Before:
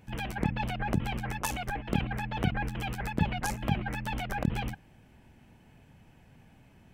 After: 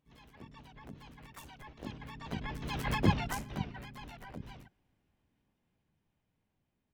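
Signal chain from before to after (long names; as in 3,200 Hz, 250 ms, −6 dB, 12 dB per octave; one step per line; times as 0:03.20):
source passing by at 0:02.98, 15 m/s, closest 2.3 metres
pitch-shifted copies added +4 semitones −1 dB, +12 semitones −9 dB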